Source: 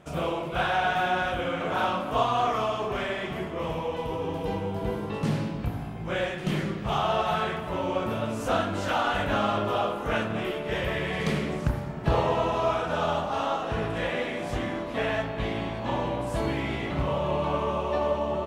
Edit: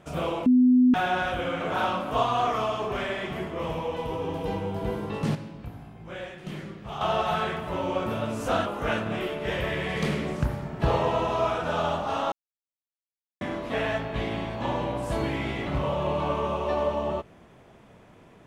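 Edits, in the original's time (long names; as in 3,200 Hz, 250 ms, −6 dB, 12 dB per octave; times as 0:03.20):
0:00.46–0:00.94: beep over 251 Hz −14.5 dBFS
0:05.35–0:07.01: clip gain −9 dB
0:08.66–0:09.90: remove
0:13.56–0:14.65: silence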